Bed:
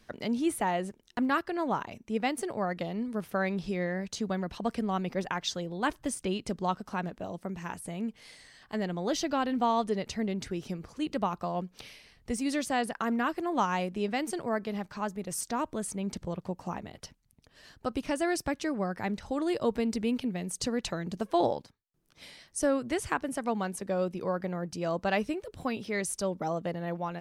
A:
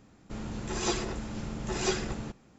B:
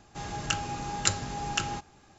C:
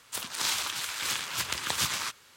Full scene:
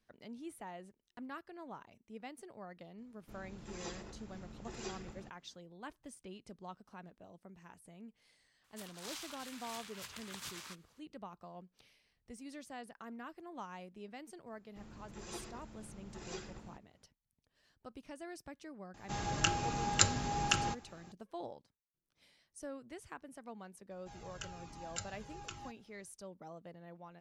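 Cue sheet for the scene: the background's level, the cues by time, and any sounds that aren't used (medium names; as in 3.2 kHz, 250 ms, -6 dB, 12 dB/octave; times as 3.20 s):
bed -18.5 dB
2.98 s: add A -15.5 dB
8.64 s: add C -17 dB + saturation -15.5 dBFS
14.46 s: add A -16.5 dB
18.94 s: add B -1.5 dB
23.91 s: add B -12.5 dB + Shepard-style flanger falling 1.2 Hz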